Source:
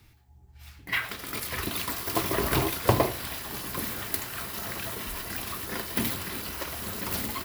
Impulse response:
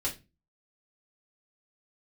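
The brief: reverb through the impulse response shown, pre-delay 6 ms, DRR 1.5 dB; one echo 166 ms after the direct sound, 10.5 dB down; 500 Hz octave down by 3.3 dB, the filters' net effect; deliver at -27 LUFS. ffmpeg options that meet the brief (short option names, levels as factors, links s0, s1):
-filter_complex "[0:a]equalizer=f=500:t=o:g=-4.5,aecho=1:1:166:0.299,asplit=2[s0][s1];[1:a]atrim=start_sample=2205,adelay=6[s2];[s1][s2]afir=irnorm=-1:irlink=0,volume=0.501[s3];[s0][s3]amix=inputs=2:normalize=0,volume=1.06"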